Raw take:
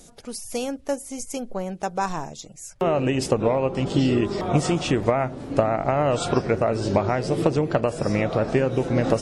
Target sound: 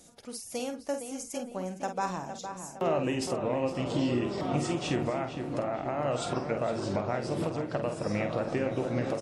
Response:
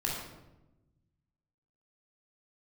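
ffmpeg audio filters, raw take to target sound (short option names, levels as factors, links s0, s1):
-filter_complex "[0:a]highpass=f=120:p=1,bandreject=f=420:w=12,alimiter=limit=0.237:level=0:latency=1:release=490,asplit=2[s0][s1];[s1]adelay=49,volume=0.398[s2];[s0][s2]amix=inputs=2:normalize=0,asplit=2[s3][s4];[s4]adelay=461,lowpass=f=2900:p=1,volume=0.398,asplit=2[s5][s6];[s6]adelay=461,lowpass=f=2900:p=1,volume=0.52,asplit=2[s7][s8];[s8]adelay=461,lowpass=f=2900:p=1,volume=0.52,asplit=2[s9][s10];[s10]adelay=461,lowpass=f=2900:p=1,volume=0.52,asplit=2[s11][s12];[s12]adelay=461,lowpass=f=2900:p=1,volume=0.52,asplit=2[s13][s14];[s14]adelay=461,lowpass=f=2900:p=1,volume=0.52[s15];[s5][s7][s9][s11][s13][s15]amix=inputs=6:normalize=0[s16];[s3][s16]amix=inputs=2:normalize=0,volume=0.473"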